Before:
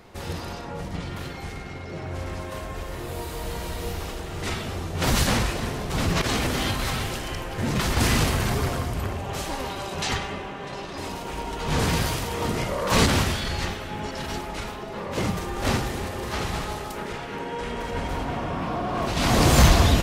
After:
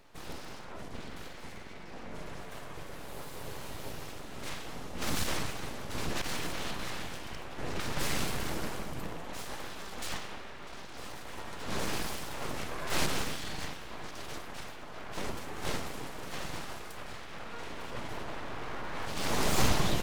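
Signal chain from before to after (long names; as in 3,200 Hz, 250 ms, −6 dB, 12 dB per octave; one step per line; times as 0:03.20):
0:06.52–0:07.99: high-shelf EQ 6,600 Hz −7.5 dB
full-wave rectification
level −8 dB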